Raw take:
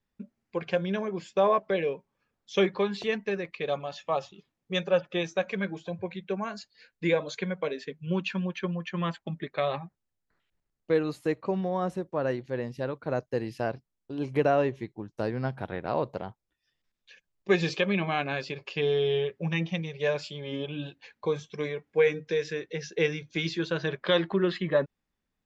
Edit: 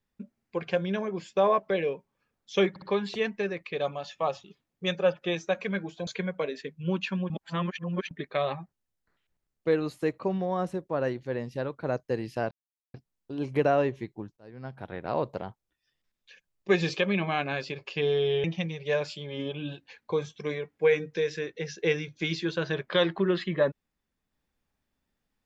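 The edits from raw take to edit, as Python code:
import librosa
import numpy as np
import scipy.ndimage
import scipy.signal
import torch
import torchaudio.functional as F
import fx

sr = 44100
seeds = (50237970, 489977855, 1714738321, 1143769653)

y = fx.edit(x, sr, fx.stutter(start_s=2.7, slice_s=0.06, count=3),
    fx.cut(start_s=5.95, length_s=1.35),
    fx.reverse_span(start_s=8.53, length_s=0.81),
    fx.insert_silence(at_s=13.74, length_s=0.43),
    fx.fade_in_span(start_s=15.17, length_s=0.83),
    fx.cut(start_s=19.24, length_s=0.34), tone=tone)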